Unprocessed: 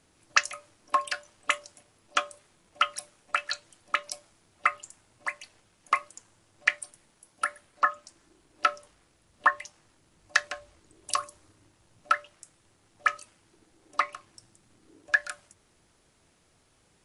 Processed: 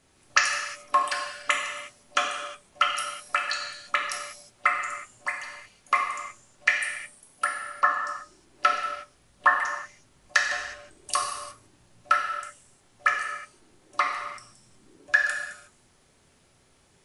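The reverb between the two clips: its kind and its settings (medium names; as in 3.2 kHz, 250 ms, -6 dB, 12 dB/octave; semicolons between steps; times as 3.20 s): gated-style reverb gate 390 ms falling, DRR -1 dB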